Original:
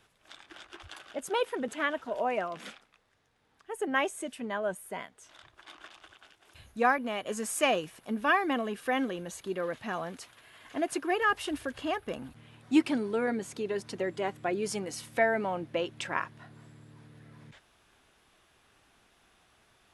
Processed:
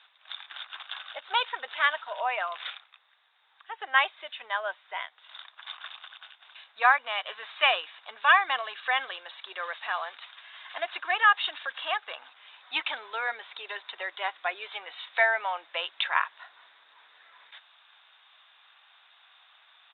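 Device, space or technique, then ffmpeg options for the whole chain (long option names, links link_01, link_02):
musical greeting card: -af "aresample=8000,aresample=44100,highpass=frequency=840:width=0.5412,highpass=frequency=840:width=1.3066,equalizer=frequency=3700:width_type=o:width=0.21:gain=11.5,volume=7dB"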